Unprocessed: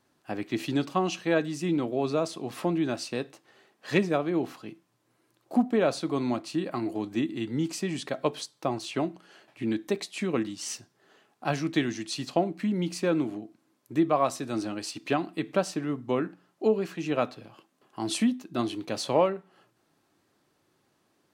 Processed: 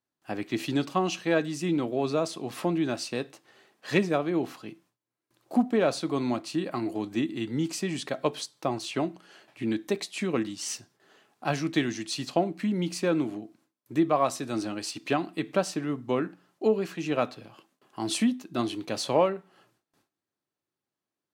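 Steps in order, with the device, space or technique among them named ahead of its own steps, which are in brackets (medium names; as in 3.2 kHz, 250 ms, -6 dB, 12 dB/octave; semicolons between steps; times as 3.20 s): exciter from parts (in parallel at -10 dB: high-pass 2 kHz 6 dB/octave + saturation -33.5 dBFS, distortion -9 dB); on the sum: gate with hold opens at -57 dBFS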